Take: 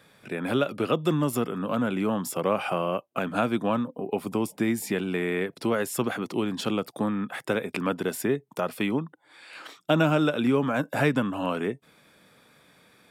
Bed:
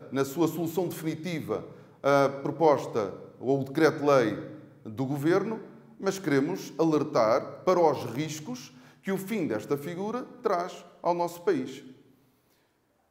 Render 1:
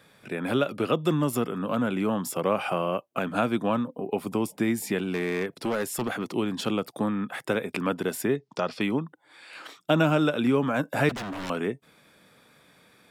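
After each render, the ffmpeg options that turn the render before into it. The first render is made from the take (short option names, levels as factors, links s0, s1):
-filter_complex "[0:a]asettb=1/sr,asplit=3[s0][s1][s2];[s0]atrim=end=5.054[s3];[s1]atrim=start=5.05:end=6.32,asetpts=PTS-STARTPTS,afade=t=in:d=0.004:c=qsin,afade=t=out:st=1.266:d=0.004:c=qsin,volume=13.3,asoftclip=hard,volume=0.075[s4];[s2]atrim=start=6.316[s5];[s3][s4]acrossfade=d=0.004:c1=hsin:c2=qsin[s6];[s6][s5]acrossfade=d=0.004:c1=qsin:c2=hsin,asettb=1/sr,asplit=3[s7][s8][s9];[s7]atrim=end=8.364[s10];[s8]atrim=start=8.36:end=8.81,asetpts=PTS-STARTPTS,afade=t=in:d=0.004:c=qsin,afade=t=out:st=0.446:d=0.004:c=qsin,lowpass=f=5000:t=q:w=2.8[s11];[s9]atrim=start=8.806[s12];[s10][s11]acrossfade=d=0.004:c1=hsin:c2=qsin[s13];[s13][s12]acrossfade=d=0.004:c1=qsin:c2=hsin,asettb=1/sr,asplit=3[s14][s15][s16];[s14]atrim=end=11.094[s17];[s15]atrim=start=11.09:end=11.5,asetpts=PTS-STARTPTS,afade=t=in:d=0.004:c=qsin,afade=t=out:st=0.406:d=0.004:c=qsin,aeval=exprs='0.0355*(abs(mod(val(0)/0.0355+3,4)-2)-1)':c=same[s18];[s16]atrim=start=11.496[s19];[s17][s18]acrossfade=d=0.004:c1=hsin:c2=qsin[s20];[s20][s19]acrossfade=d=0.004:c1=qsin:c2=hsin"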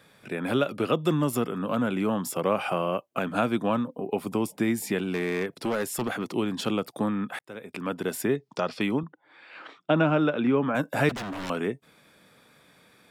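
-filter_complex "[0:a]asettb=1/sr,asplit=3[s0][s1][s2];[s0]atrim=end=9.034[s3];[s1]atrim=start=9.03:end=10.75,asetpts=PTS-STARTPTS,afade=t=in:d=0.004:c=qsin,afade=t=out:st=1.716:d=0.004:c=qsin,highpass=120,lowpass=2700[s4];[s2]atrim=start=10.746[s5];[s3][s4]acrossfade=d=0.004:c1=hsin:c2=qsin[s6];[s6][s5]acrossfade=d=0.004:c1=qsin:c2=hsin,asplit=2[s7][s8];[s7]atrim=end=7.39,asetpts=PTS-STARTPTS,afade=t=out:st=7.386:d=0.004:c=hsin[s9];[s8]atrim=start=7.39,asetpts=PTS-STARTPTS,afade=t=in:d=0.77[s10];[s9][s10]concat=n=2:v=0:a=1"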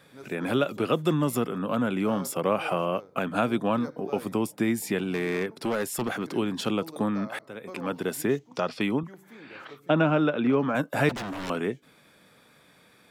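-filter_complex "[1:a]volume=0.112[s0];[0:a][s0]amix=inputs=2:normalize=0"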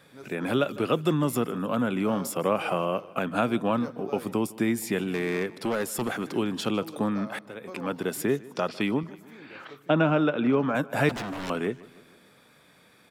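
-af "aecho=1:1:153|306|459|612:0.0891|0.0481|0.026|0.014"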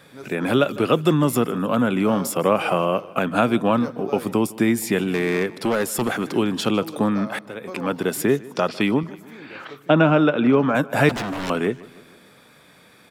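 -af "volume=2.11"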